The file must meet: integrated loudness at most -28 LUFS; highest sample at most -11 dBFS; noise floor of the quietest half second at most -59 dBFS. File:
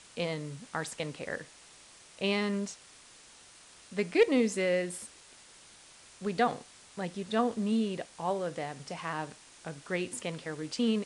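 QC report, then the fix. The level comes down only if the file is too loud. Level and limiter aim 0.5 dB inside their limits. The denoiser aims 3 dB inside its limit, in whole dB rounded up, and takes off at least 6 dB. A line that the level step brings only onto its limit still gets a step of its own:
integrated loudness -32.5 LUFS: pass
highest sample -12.5 dBFS: pass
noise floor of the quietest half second -56 dBFS: fail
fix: noise reduction 6 dB, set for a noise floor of -56 dBFS

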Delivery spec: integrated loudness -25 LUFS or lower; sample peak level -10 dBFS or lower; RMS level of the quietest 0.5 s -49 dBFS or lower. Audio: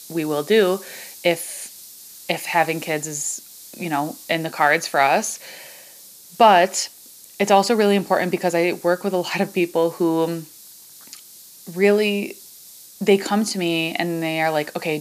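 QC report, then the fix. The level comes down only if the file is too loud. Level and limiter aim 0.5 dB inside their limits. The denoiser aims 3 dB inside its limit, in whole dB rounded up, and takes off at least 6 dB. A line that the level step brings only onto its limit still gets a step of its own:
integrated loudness -20.0 LUFS: fail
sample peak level -3.0 dBFS: fail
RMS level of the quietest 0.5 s -45 dBFS: fail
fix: trim -5.5 dB; peak limiter -10.5 dBFS

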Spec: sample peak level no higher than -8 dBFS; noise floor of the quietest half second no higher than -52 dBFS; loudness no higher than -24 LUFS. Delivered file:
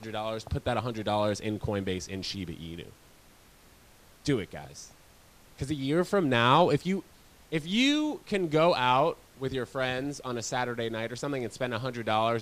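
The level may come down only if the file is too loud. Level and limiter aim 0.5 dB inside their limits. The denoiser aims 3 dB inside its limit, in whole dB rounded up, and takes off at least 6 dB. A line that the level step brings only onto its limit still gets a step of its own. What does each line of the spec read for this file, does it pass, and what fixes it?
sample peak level -10.5 dBFS: pass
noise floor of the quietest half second -57 dBFS: pass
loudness -29.0 LUFS: pass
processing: none needed

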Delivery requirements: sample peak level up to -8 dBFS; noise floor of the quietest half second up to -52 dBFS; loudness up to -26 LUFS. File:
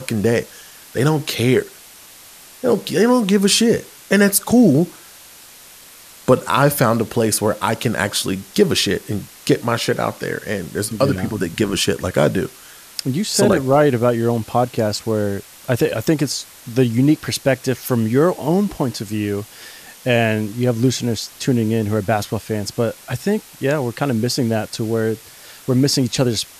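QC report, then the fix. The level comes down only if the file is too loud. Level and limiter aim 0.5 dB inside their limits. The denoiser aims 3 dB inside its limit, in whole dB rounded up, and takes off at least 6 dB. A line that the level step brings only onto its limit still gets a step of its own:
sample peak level -2.5 dBFS: fail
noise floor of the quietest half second -43 dBFS: fail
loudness -18.5 LUFS: fail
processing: noise reduction 6 dB, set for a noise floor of -43 dBFS; trim -8 dB

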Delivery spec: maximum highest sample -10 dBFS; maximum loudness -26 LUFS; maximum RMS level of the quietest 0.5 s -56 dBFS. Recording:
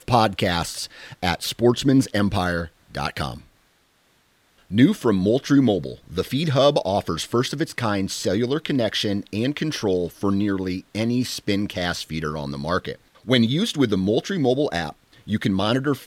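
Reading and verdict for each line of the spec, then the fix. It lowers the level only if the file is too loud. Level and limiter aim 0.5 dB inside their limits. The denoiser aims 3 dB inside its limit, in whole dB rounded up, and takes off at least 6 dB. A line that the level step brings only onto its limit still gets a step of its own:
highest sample -3.0 dBFS: fail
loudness -22.5 LUFS: fail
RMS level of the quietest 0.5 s -62 dBFS: pass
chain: trim -4 dB; peak limiter -10.5 dBFS

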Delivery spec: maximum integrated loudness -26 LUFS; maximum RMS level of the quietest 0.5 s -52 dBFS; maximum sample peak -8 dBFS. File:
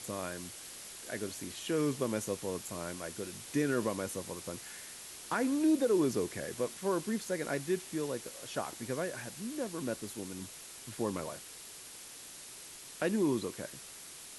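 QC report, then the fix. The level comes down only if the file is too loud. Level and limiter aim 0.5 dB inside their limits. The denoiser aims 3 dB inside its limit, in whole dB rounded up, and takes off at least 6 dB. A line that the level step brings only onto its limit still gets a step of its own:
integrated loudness -35.5 LUFS: pass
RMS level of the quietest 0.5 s -49 dBFS: fail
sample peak -19.5 dBFS: pass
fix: noise reduction 6 dB, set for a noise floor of -49 dBFS

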